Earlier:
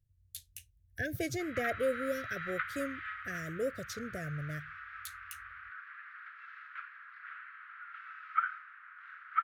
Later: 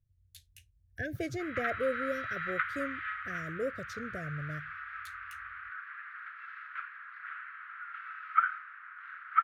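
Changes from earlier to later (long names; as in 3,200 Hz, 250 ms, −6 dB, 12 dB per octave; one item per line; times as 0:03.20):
background +5.5 dB
master: add low-pass filter 2,700 Hz 6 dB per octave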